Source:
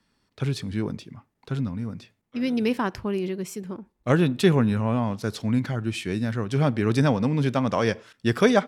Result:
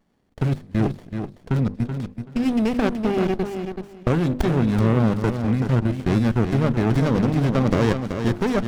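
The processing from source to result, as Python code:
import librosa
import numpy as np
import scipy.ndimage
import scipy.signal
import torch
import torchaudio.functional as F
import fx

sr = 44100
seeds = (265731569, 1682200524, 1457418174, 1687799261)

p1 = fx.over_compress(x, sr, threshold_db=-25.0, ratio=-0.5)
p2 = x + (p1 * librosa.db_to_amplitude(-0.5))
p3 = fx.low_shelf(p2, sr, hz=92.0, db=-4.5)
p4 = fx.level_steps(p3, sr, step_db=23)
p5 = fx.hum_notches(p4, sr, base_hz=50, count=7)
p6 = p5 + fx.echo_feedback(p5, sr, ms=380, feedback_pct=19, wet_db=-7.5, dry=0)
p7 = fx.running_max(p6, sr, window=33)
y = p7 * librosa.db_to_amplitude(4.0)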